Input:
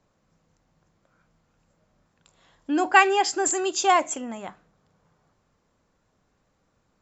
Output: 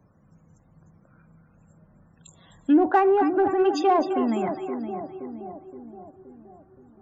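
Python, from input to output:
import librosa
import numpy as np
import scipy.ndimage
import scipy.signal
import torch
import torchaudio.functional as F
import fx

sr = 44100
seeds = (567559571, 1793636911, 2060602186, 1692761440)

p1 = fx.env_lowpass_down(x, sr, base_hz=660.0, full_db=-19.5)
p2 = p1 + fx.echo_split(p1, sr, split_hz=750.0, low_ms=522, high_ms=258, feedback_pct=52, wet_db=-8.5, dry=0)
p3 = fx.spec_topn(p2, sr, count=64)
p4 = fx.highpass(p3, sr, hz=140.0, slope=6)
p5 = fx.bass_treble(p4, sr, bass_db=14, treble_db=10)
p6 = 10.0 ** (-25.5 / 20.0) * np.tanh(p5 / 10.0 ** (-25.5 / 20.0))
p7 = p5 + (p6 * librosa.db_to_amplitude(-9.0))
y = p7 * librosa.db_to_amplitude(2.0)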